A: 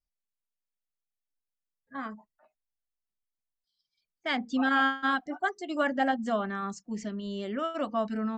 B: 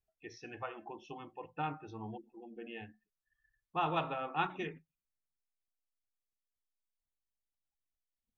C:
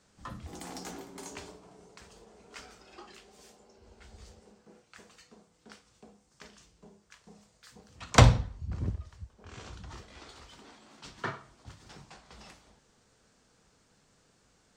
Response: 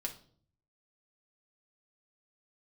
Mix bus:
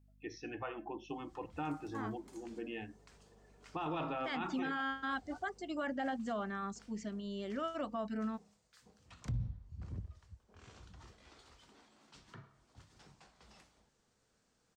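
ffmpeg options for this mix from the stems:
-filter_complex "[0:a]aeval=exprs='val(0)+0.00126*(sin(2*PI*50*n/s)+sin(2*PI*2*50*n/s)/2+sin(2*PI*3*50*n/s)/3+sin(2*PI*4*50*n/s)/4+sin(2*PI*5*50*n/s)/5)':c=same,volume=0.473[s0];[1:a]equalizer=f=300:t=o:w=0.41:g=9,alimiter=level_in=2.37:limit=0.0631:level=0:latency=1:release=21,volume=0.422,volume=1.12,asplit=2[s1][s2];[2:a]acrossover=split=220[s3][s4];[s4]acompressor=threshold=0.00562:ratio=10[s5];[s3][s5]amix=inputs=2:normalize=0,adelay=1100,volume=0.316[s6];[s2]apad=whole_len=699443[s7];[s6][s7]sidechaincompress=threshold=0.00708:ratio=8:attack=16:release=390[s8];[s0][s1][s8]amix=inputs=3:normalize=0,alimiter=level_in=1.88:limit=0.0631:level=0:latency=1:release=28,volume=0.531"

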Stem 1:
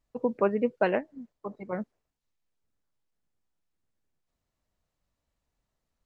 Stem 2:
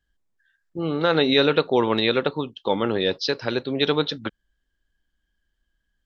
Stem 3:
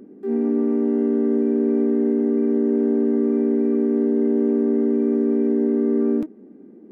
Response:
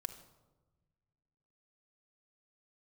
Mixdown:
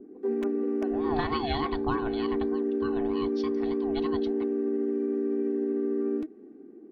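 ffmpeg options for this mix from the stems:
-filter_complex "[0:a]equalizer=f=2300:w=1.5:g=-15,bandreject=f=53.89:t=h:w=4,bandreject=f=107.78:t=h:w=4,bandreject=f=161.67:t=h:w=4,bandreject=f=215.56:t=h:w=4,bandreject=f=269.45:t=h:w=4,bandreject=f=323.34:t=h:w=4,bandreject=f=377.23:t=h:w=4,bandreject=f=431.12:t=h:w=4,bandreject=f=485.01:t=h:w=4,bandreject=f=538.9:t=h:w=4,bandreject=f=592.79:t=h:w=4,aeval=exprs='(mod(5.01*val(0)+1,2)-1)/5.01':c=same,volume=0.178,asplit=2[s0][s1];[1:a]bandreject=f=81.46:t=h:w=4,bandreject=f=162.92:t=h:w=4,bandreject=f=244.38:t=h:w=4,bandreject=f=325.84:t=h:w=4,bandreject=f=407.3:t=h:w=4,bandreject=f=488.76:t=h:w=4,bandreject=f=570.22:t=h:w=4,bandreject=f=651.68:t=h:w=4,bandreject=f=733.14:t=h:w=4,bandreject=f=814.6:t=h:w=4,bandreject=f=896.06:t=h:w=4,bandreject=f=977.52:t=h:w=4,bandreject=f=1058.98:t=h:w=4,bandreject=f=1140.44:t=h:w=4,bandreject=f=1221.9:t=h:w=4,aeval=exprs='val(0)*sin(2*PI*510*n/s+510*0.3/3.3*sin(2*PI*3.3*n/s))':c=same,adelay=150,volume=0.75,afade=t=out:st=1.88:d=0.25:silence=0.251189[s2];[2:a]bandreject=f=690:w=16,alimiter=limit=0.133:level=0:latency=1:release=185,adynamicequalizer=threshold=0.00355:dfrequency=1800:dqfactor=0.7:tfrequency=1800:tqfactor=0.7:attack=5:release=100:ratio=0.375:range=3.5:mode=boostabove:tftype=highshelf,volume=0.562[s3];[s1]apad=whole_len=273466[s4];[s2][s4]sidechaincompress=threshold=0.00282:ratio=4:attack=12:release=165[s5];[s0][s5][s3]amix=inputs=3:normalize=0,lowpass=f=3100:p=1,aecho=1:1:2.7:0.63,alimiter=limit=0.15:level=0:latency=1:release=336"

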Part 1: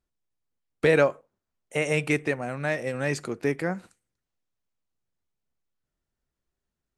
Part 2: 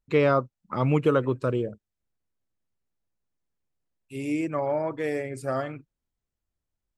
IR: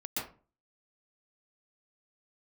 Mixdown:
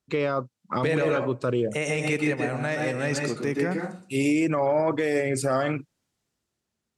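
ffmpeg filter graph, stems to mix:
-filter_complex "[0:a]lowshelf=f=180:g=6.5,volume=0.75,asplit=3[s0][s1][s2];[s1]volume=0.708[s3];[1:a]dynaudnorm=f=170:g=9:m=3.16,volume=1.19[s4];[s2]apad=whole_len=307378[s5];[s4][s5]sidechaincompress=threshold=0.0501:ratio=8:attack=39:release=1270[s6];[2:a]atrim=start_sample=2205[s7];[s3][s7]afir=irnorm=-1:irlink=0[s8];[s0][s6][s8]amix=inputs=3:normalize=0,highpass=120,lowpass=6300,aemphasis=mode=production:type=50fm,alimiter=limit=0.168:level=0:latency=1:release=38"

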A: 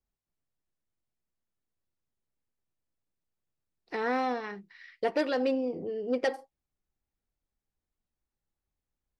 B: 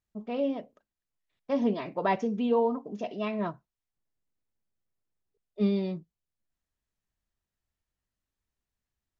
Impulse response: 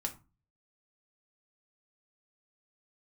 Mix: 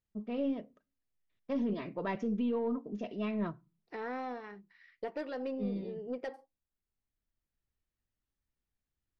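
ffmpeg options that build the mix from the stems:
-filter_complex "[0:a]alimiter=limit=0.0891:level=0:latency=1:release=476,volume=0.398,asplit=3[s0][s1][s2];[s1]volume=0.0708[s3];[1:a]equalizer=f=800:t=o:w=0.83:g=-9.5,volume=0.75,asplit=2[s4][s5];[s5]volume=0.168[s6];[s2]apad=whole_len=405426[s7];[s4][s7]sidechaincompress=threshold=0.00398:ratio=8:attack=16:release=1310[s8];[2:a]atrim=start_sample=2205[s9];[s3][s6]amix=inputs=2:normalize=0[s10];[s10][s9]afir=irnorm=-1:irlink=0[s11];[s0][s8][s11]amix=inputs=3:normalize=0,highshelf=f=3400:g=-9.5,aeval=exprs='0.126*(cos(1*acos(clip(val(0)/0.126,-1,1)))-cos(1*PI/2))+0.00282*(cos(6*acos(clip(val(0)/0.126,-1,1)))-cos(6*PI/2))':c=same,alimiter=level_in=1.26:limit=0.0631:level=0:latency=1:release=12,volume=0.794"

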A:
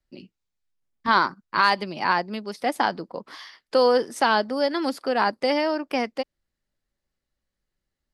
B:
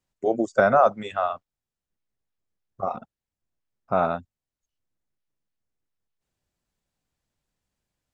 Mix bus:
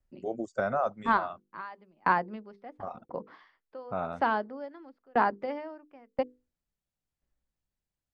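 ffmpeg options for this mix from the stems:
-filter_complex "[0:a]lowpass=1700,bandreject=f=50:t=h:w=6,bandreject=f=100:t=h:w=6,bandreject=f=150:t=h:w=6,bandreject=f=200:t=h:w=6,bandreject=f=250:t=h:w=6,bandreject=f=300:t=h:w=6,bandreject=f=350:t=h:w=6,bandreject=f=400:t=h:w=6,bandreject=f=450:t=h:w=6,bandreject=f=500:t=h:w=6,aeval=exprs='val(0)*pow(10,-35*if(lt(mod(0.97*n/s,1),2*abs(0.97)/1000),1-mod(0.97*n/s,1)/(2*abs(0.97)/1000),(mod(0.97*n/s,1)-2*abs(0.97)/1000)/(1-2*abs(0.97)/1000))/20)':c=same,volume=1[s0];[1:a]volume=0.266,asplit=2[s1][s2];[s2]apad=whole_len=358779[s3];[s0][s3]sidechaincompress=threshold=0.00562:ratio=4:attack=40:release=150[s4];[s4][s1]amix=inputs=2:normalize=0,lowshelf=f=130:g=6"

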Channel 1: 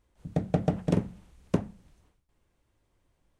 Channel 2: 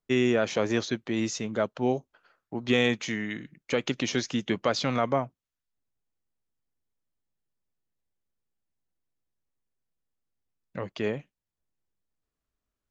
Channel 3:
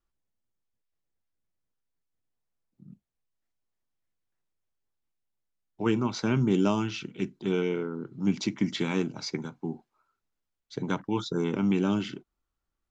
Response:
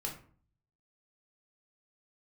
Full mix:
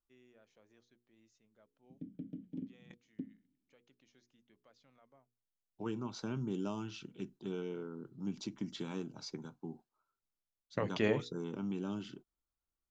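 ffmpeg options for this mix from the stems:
-filter_complex "[0:a]asplit=3[s0][s1][s2];[s0]bandpass=f=270:t=q:w=8,volume=1[s3];[s1]bandpass=f=2290:t=q:w=8,volume=0.501[s4];[s2]bandpass=f=3010:t=q:w=8,volume=0.355[s5];[s3][s4][s5]amix=inputs=3:normalize=0,equalizer=f=190:w=0.38:g=11.5,adelay=1650,volume=0.168[s6];[1:a]bandreject=f=60:t=h:w=6,bandreject=f=120:t=h:w=6,bandreject=f=180:t=h:w=6,bandreject=f=240:t=h:w=6,bandreject=f=300:t=h:w=6,bandreject=f=360:t=h:w=6,bandreject=f=420:t=h:w=6,bandreject=f=480:t=h:w=6,volume=0.944[s7];[2:a]volume=0.316,asplit=2[s8][s9];[s9]apad=whole_len=568964[s10];[s7][s10]sidechaingate=range=0.01:threshold=0.00251:ratio=16:detection=peak[s11];[s6][s8]amix=inputs=2:normalize=0,equalizer=f=2100:t=o:w=0.43:g=-10.5,acompressor=threshold=0.01:ratio=1.5,volume=1[s12];[s11][s12]amix=inputs=2:normalize=0"

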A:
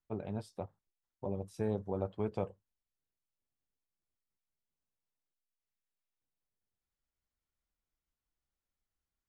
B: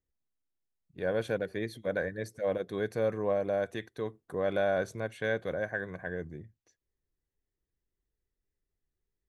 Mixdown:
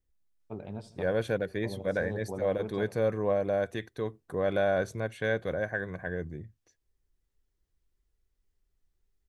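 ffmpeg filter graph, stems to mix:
-filter_complex "[0:a]lowpass=7600,highshelf=f=4300:g=5.5,adelay=400,volume=0.891,asplit=2[s0][s1];[s1]volume=0.133[s2];[1:a]lowshelf=f=66:g=12,volume=1.19,asplit=2[s3][s4];[s4]apad=whole_len=427252[s5];[s0][s5]sidechaincompress=threshold=0.0316:ratio=8:attack=16:release=206[s6];[s2]aecho=0:1:80|160|240|320|400|480|560|640:1|0.55|0.303|0.166|0.0915|0.0503|0.0277|0.0152[s7];[s6][s3][s7]amix=inputs=3:normalize=0"

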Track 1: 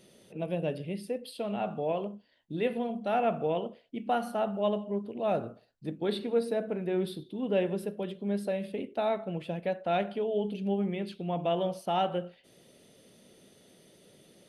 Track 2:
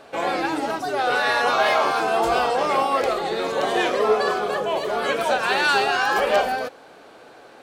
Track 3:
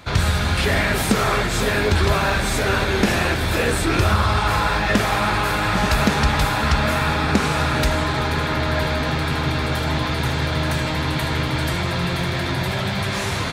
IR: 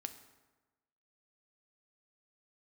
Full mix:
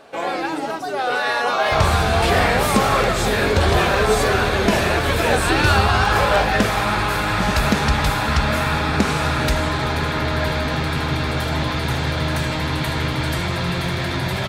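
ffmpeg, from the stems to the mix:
-filter_complex "[0:a]volume=0.251[s0];[1:a]volume=1[s1];[2:a]adelay=1650,volume=1[s2];[s0][s1][s2]amix=inputs=3:normalize=0"

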